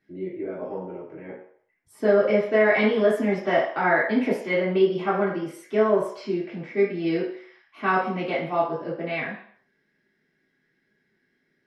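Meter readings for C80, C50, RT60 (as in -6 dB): 8.5 dB, 4.0 dB, 0.60 s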